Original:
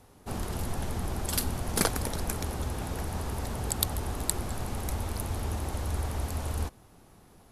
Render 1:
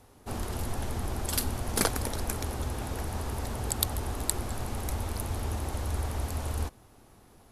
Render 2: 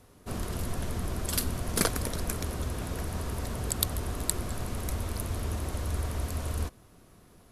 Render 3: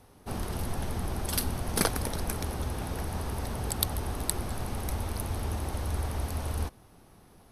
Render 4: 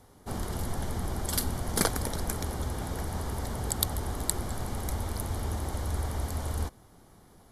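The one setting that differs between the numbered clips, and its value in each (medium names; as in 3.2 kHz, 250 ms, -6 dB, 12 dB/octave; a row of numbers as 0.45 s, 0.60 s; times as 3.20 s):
band-stop, frequency: 170 Hz, 830 Hz, 7.2 kHz, 2.6 kHz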